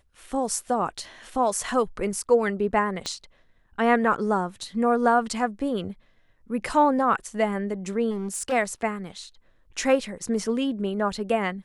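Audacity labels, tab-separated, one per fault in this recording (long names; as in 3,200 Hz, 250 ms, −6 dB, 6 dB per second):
3.060000	3.060000	click −16 dBFS
8.100000	8.530000	clipping −25.5 dBFS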